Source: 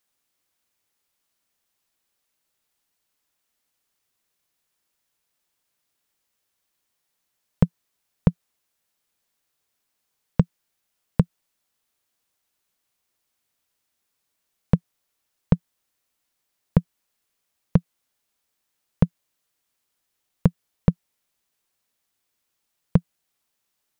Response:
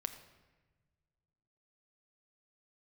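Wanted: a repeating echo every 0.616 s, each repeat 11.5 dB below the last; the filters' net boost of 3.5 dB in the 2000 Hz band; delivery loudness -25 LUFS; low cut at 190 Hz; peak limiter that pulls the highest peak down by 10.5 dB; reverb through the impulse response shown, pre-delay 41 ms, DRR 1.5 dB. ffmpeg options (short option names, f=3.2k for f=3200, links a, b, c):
-filter_complex "[0:a]highpass=190,equalizer=f=2k:t=o:g=4.5,alimiter=limit=-17.5dB:level=0:latency=1,aecho=1:1:616|1232|1848:0.266|0.0718|0.0194,asplit=2[a][b];[1:a]atrim=start_sample=2205,adelay=41[c];[b][c]afir=irnorm=-1:irlink=0,volume=-0.5dB[d];[a][d]amix=inputs=2:normalize=0,volume=13.5dB"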